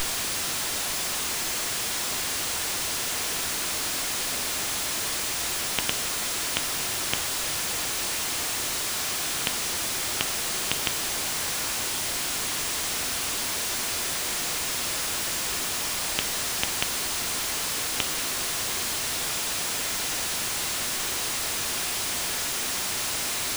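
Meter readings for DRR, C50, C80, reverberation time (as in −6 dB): 11.5 dB, 17.5 dB, 21.5 dB, 0.55 s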